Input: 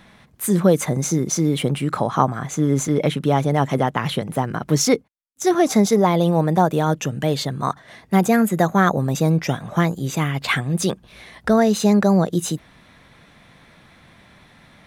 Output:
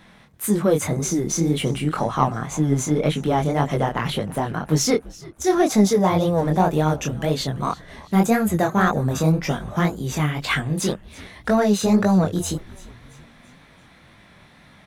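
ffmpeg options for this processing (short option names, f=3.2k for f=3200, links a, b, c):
-filter_complex "[0:a]asplit=2[a][b];[b]asoftclip=type=tanh:threshold=-13dB,volume=-4dB[c];[a][c]amix=inputs=2:normalize=0,flanger=delay=19:depth=8:speed=1.9,asplit=5[d][e][f][g][h];[e]adelay=337,afreqshift=-110,volume=-20.5dB[i];[f]adelay=674,afreqshift=-220,volume=-26.5dB[j];[g]adelay=1011,afreqshift=-330,volume=-32.5dB[k];[h]adelay=1348,afreqshift=-440,volume=-38.6dB[l];[d][i][j][k][l]amix=inputs=5:normalize=0,volume=-2dB"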